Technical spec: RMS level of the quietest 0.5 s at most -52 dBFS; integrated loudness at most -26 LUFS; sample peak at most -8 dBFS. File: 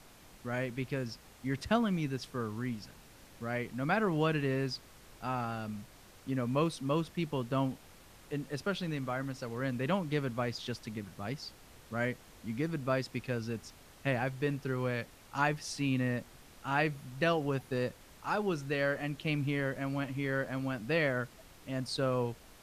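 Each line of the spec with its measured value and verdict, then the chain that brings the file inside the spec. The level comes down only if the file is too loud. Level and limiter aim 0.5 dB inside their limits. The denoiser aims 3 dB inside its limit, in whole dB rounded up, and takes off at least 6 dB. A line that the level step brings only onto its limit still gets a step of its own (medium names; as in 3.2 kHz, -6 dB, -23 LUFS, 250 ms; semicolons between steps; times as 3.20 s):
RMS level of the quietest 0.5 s -56 dBFS: pass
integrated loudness -35.0 LUFS: pass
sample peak -15.5 dBFS: pass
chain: none needed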